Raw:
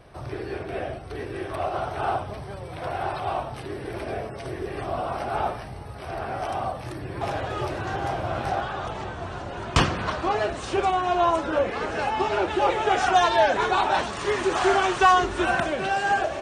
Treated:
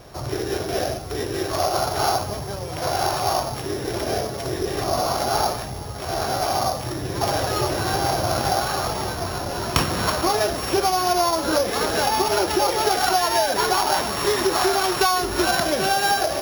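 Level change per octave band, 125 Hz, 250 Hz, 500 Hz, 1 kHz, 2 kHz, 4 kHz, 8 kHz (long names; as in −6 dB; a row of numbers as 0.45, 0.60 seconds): +3.5, +4.0, +3.0, +2.0, +1.0, +8.5, +14.0 decibels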